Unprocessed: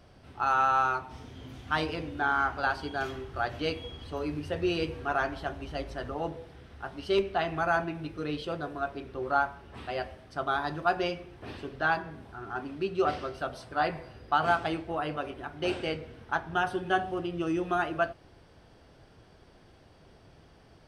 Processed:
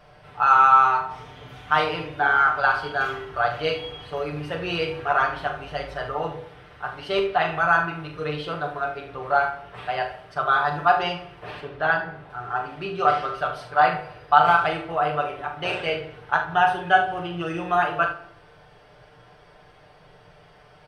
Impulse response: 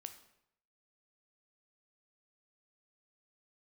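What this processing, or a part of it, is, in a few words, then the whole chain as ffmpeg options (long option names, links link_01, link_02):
filtered reverb send: -filter_complex "[0:a]asplit=2[link_01][link_02];[link_02]highpass=frequency=290:width=0.5412,highpass=frequency=290:width=1.3066,lowpass=3400[link_03];[1:a]atrim=start_sample=2205[link_04];[link_03][link_04]afir=irnorm=-1:irlink=0,volume=7.5dB[link_05];[link_01][link_05]amix=inputs=2:normalize=0,asettb=1/sr,asplit=3[link_06][link_07][link_08];[link_06]atrim=end=11.604[link_09];[link_07]atrim=start=11.6:end=12.3,asetpts=PTS-STARTPTS,afade=type=in:duration=0.004:curve=qsin,afade=type=out:start_time=0.696:duration=0.004:curve=qsin,highshelf=frequency=4100:gain=-9[link_10];[link_08]atrim=start=12.296[link_11];[link_09][link_10]acrossfade=duration=0.004:curve1=hsin:curve2=qsin[link_12];[link_12][link_11]acrossfade=duration=0.004:curve1=qsin:curve2=hsin,aecho=1:1:6.7:0.69,aecho=1:1:41|74:0.422|0.237"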